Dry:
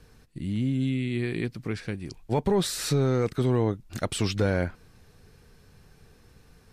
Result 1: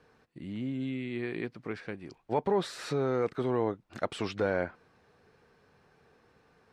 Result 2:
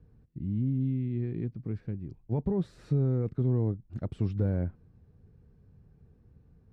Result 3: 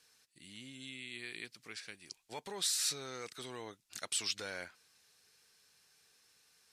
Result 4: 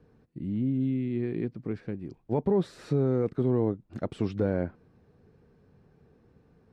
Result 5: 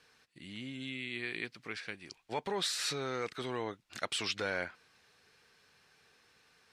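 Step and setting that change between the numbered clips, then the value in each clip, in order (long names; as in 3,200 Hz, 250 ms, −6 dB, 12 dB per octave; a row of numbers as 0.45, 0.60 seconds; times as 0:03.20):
resonant band-pass, frequency: 860, 100, 7,100, 290, 2,700 Hertz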